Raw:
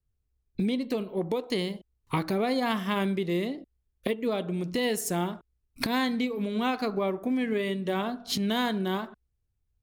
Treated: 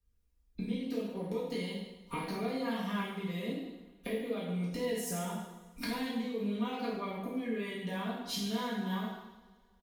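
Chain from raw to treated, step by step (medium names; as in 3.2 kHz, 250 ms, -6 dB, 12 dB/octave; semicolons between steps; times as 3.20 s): comb 4.2 ms, depth 64%; compression 4:1, threshold -37 dBFS, peak gain reduction 14.5 dB; two-slope reverb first 0.91 s, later 2.6 s, from -21 dB, DRR -7 dB; trim -5.5 dB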